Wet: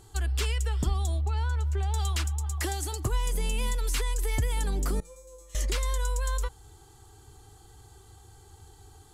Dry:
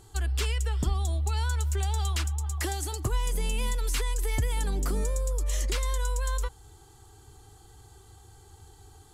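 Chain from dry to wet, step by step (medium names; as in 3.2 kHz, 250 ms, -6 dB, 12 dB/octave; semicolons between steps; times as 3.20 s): 1.21–1.94 s: low-pass 1.7 kHz 6 dB/octave; 5.00–5.55 s: feedback comb 170 Hz, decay 0.54 s, harmonics all, mix 100%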